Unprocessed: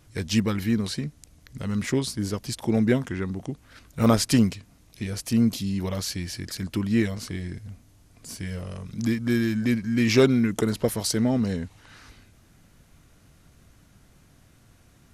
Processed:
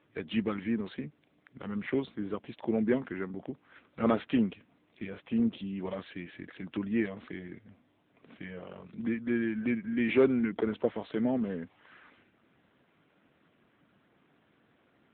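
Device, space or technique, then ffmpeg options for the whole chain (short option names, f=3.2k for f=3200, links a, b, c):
telephone: -af "highpass=260,lowpass=3.2k,asoftclip=type=tanh:threshold=-10.5dB,volume=-2.5dB" -ar 8000 -c:a libopencore_amrnb -b:a 7950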